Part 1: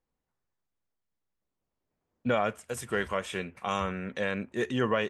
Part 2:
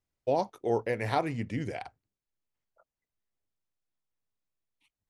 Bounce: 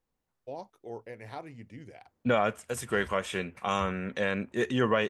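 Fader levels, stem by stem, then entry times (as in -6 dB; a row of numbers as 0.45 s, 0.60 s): +1.5 dB, -13.0 dB; 0.00 s, 0.20 s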